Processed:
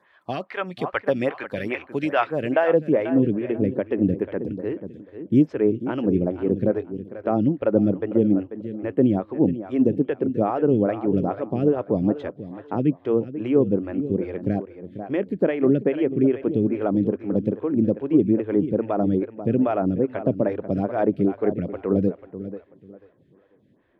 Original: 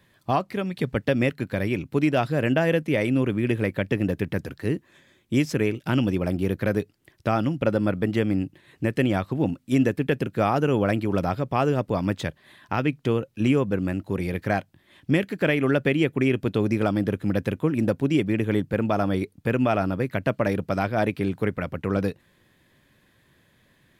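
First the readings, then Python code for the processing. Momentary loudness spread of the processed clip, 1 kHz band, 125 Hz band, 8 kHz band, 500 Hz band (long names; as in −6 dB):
10 LU, −1.5 dB, −2.5 dB, can't be measured, +3.0 dB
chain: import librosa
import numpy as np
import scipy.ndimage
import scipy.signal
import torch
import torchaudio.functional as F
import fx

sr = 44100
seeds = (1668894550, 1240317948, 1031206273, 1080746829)

p1 = fx.peak_eq(x, sr, hz=3100.0, db=3.0, octaves=0.3)
p2 = fx.filter_sweep_bandpass(p1, sr, from_hz=1200.0, to_hz=340.0, start_s=2.23, end_s=3.1, q=0.9)
p3 = fx.low_shelf(p2, sr, hz=87.0, db=8.5)
p4 = fx.rider(p3, sr, range_db=10, speed_s=2.0)
p5 = p3 + F.gain(torch.from_numpy(p4), 0.0).numpy()
p6 = fx.echo_feedback(p5, sr, ms=490, feedback_pct=26, wet_db=-12)
y = fx.stagger_phaser(p6, sr, hz=2.4)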